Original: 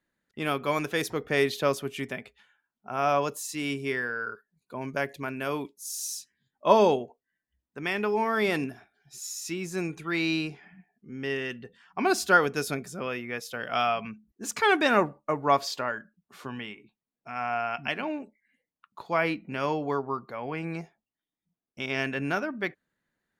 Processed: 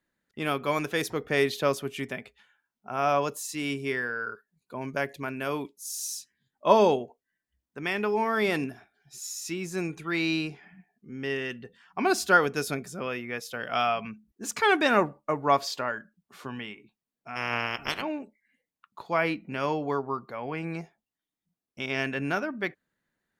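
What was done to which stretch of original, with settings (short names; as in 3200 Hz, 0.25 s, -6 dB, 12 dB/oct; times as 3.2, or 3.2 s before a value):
17.35–18.01 spectral limiter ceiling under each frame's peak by 26 dB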